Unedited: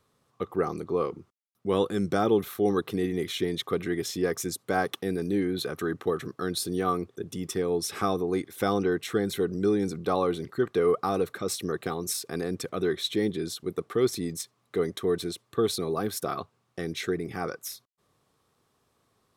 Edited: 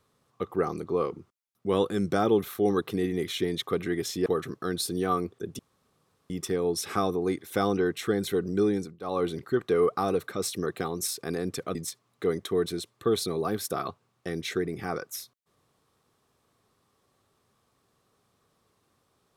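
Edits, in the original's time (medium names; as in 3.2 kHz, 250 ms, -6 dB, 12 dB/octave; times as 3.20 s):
4.26–6.03 s: delete
7.36 s: insert room tone 0.71 s
9.78–10.30 s: dip -18.5 dB, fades 0.25 s
12.81–14.27 s: delete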